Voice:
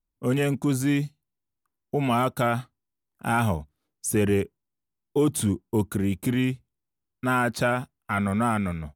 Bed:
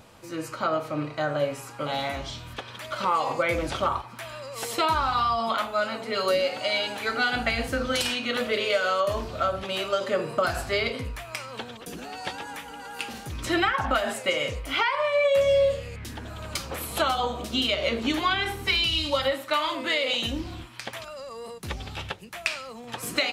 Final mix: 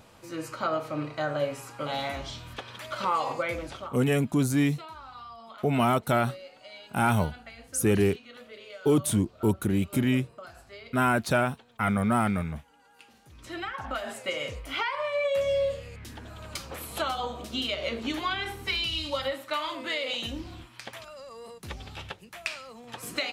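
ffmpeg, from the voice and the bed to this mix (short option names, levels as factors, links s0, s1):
-filter_complex "[0:a]adelay=3700,volume=0.944[s0];[1:a]volume=4.22,afade=t=out:st=3.21:d=0.77:silence=0.125893,afade=t=in:st=13.2:d=1.22:silence=0.177828[s1];[s0][s1]amix=inputs=2:normalize=0"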